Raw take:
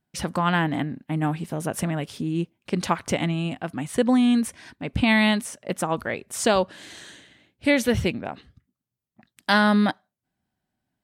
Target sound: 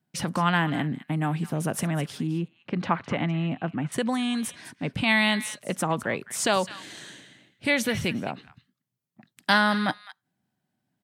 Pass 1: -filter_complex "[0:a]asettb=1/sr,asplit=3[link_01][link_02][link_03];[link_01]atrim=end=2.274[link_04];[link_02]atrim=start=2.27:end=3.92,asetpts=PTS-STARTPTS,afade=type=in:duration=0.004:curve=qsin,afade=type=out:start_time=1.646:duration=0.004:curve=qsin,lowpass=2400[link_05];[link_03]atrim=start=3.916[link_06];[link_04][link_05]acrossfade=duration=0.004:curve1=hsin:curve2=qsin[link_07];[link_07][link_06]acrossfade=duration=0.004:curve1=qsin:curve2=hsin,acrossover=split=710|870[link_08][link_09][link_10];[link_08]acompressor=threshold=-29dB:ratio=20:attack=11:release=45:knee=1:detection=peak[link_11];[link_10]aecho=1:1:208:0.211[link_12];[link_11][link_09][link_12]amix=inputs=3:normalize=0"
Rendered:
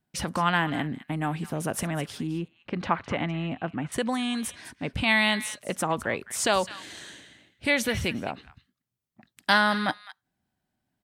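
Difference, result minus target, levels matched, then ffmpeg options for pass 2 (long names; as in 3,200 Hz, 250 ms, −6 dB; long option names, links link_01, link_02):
125 Hz band −3.0 dB
-filter_complex "[0:a]asettb=1/sr,asplit=3[link_01][link_02][link_03];[link_01]atrim=end=2.274[link_04];[link_02]atrim=start=2.27:end=3.92,asetpts=PTS-STARTPTS,afade=type=in:duration=0.004:curve=qsin,afade=type=out:start_time=1.646:duration=0.004:curve=qsin,lowpass=2400[link_05];[link_03]atrim=start=3.916[link_06];[link_04][link_05]acrossfade=duration=0.004:curve1=hsin:curve2=qsin[link_07];[link_07][link_06]acrossfade=duration=0.004:curve1=qsin:curve2=hsin,acrossover=split=710|870[link_08][link_09][link_10];[link_08]acompressor=threshold=-29dB:ratio=20:attack=11:release=45:knee=1:detection=peak,highpass=frequency=140:width_type=q:width=1.6[link_11];[link_10]aecho=1:1:208:0.211[link_12];[link_11][link_09][link_12]amix=inputs=3:normalize=0"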